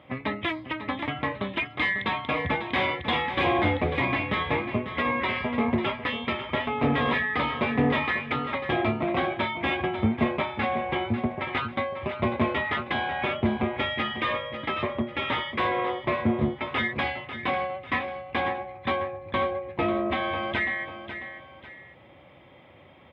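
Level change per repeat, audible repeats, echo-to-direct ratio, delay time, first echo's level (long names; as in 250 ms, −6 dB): −8.0 dB, 2, −10.0 dB, 545 ms, −10.5 dB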